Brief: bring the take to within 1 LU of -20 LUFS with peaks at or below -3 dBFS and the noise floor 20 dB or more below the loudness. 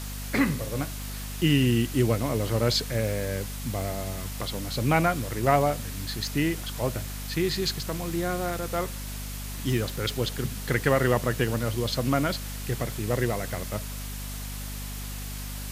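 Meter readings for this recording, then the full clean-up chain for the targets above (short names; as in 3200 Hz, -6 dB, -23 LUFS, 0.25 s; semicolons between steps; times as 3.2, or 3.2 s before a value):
hum 50 Hz; harmonics up to 250 Hz; hum level -34 dBFS; noise floor -35 dBFS; noise floor target -48 dBFS; loudness -28.0 LUFS; peak -6.5 dBFS; loudness target -20.0 LUFS
-> notches 50/100/150/200/250 Hz; denoiser 13 dB, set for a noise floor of -35 dBFS; gain +8 dB; limiter -3 dBFS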